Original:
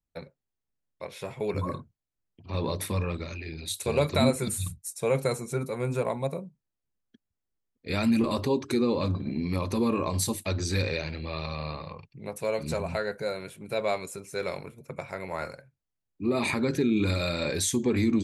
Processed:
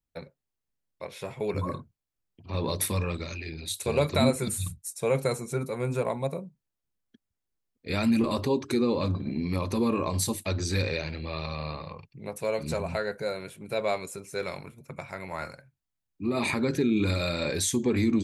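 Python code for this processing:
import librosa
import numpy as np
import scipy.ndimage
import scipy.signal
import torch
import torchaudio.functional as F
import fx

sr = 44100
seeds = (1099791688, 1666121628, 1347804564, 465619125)

y = fx.high_shelf(x, sr, hz=4200.0, db=8.5, at=(2.68, 3.5))
y = fx.peak_eq(y, sr, hz=470.0, db=-6.0, octaves=0.77, at=(14.44, 16.37))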